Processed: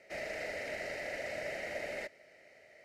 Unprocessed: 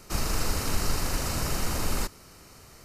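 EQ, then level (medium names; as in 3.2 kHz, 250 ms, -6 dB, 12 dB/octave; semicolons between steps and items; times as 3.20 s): two resonant band-passes 1.1 kHz, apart 1.7 oct; +5.0 dB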